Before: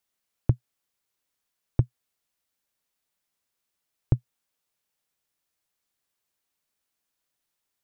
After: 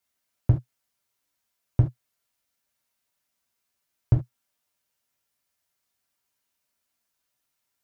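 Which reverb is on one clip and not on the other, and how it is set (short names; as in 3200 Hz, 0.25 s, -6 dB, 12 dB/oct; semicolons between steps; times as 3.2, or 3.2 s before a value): non-linear reverb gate 0.1 s falling, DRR -2.5 dB; gain -2 dB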